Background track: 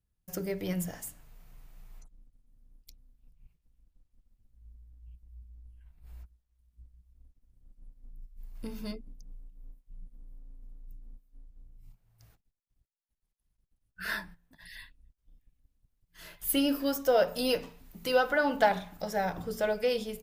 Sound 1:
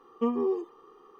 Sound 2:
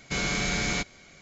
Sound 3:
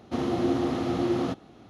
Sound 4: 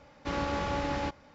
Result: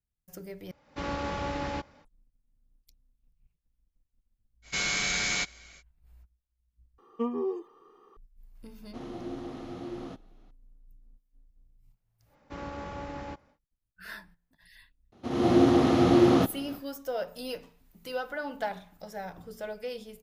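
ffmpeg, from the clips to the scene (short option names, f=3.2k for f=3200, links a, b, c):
-filter_complex "[4:a]asplit=2[a][b];[3:a]asplit=2[c][d];[0:a]volume=-8.5dB[e];[a]dynaudnorm=f=130:g=3:m=8dB[f];[2:a]tiltshelf=f=790:g=-6.5[g];[b]equalizer=f=4.1k:w=0.7:g=-5.5[h];[d]dynaudnorm=f=180:g=3:m=16.5dB[i];[e]asplit=3[j][k][l];[j]atrim=end=0.714[m];[f]atrim=end=1.34,asetpts=PTS-STARTPTS,volume=-9.5dB[n];[k]atrim=start=2.046:end=6.984[o];[1:a]atrim=end=1.19,asetpts=PTS-STARTPTS,volume=-3.5dB[p];[l]atrim=start=8.166[q];[g]atrim=end=1.21,asetpts=PTS-STARTPTS,volume=-4.5dB,afade=t=in:d=0.05,afade=t=out:st=1.16:d=0.05,adelay=4620[r];[c]atrim=end=1.69,asetpts=PTS-STARTPTS,volume=-13dB,afade=t=in:d=0.004:c=hsin,afade=t=out:st=1.686:d=0.004:c=hsin,adelay=388962S[s];[h]atrim=end=1.34,asetpts=PTS-STARTPTS,volume=-7dB,afade=t=in:d=0.1,afade=t=out:st=1.24:d=0.1,adelay=12250[t];[i]atrim=end=1.69,asetpts=PTS-STARTPTS,volume=-7.5dB,afade=t=in:d=0.004:c=hsin,afade=t=out:st=1.686:d=0.004:c=hsin,adelay=15120[u];[m][n]acrossfade=d=0.004:c1=hsin:c2=hsin[v];[v][o]acrossfade=d=0.004:c1=hsin:c2=hsin[w];[w][p]acrossfade=d=0.004:c1=hsin:c2=hsin[x];[x][q]acrossfade=d=0.004:c1=hsin:c2=hsin[y];[y][r][s][t][u]amix=inputs=5:normalize=0"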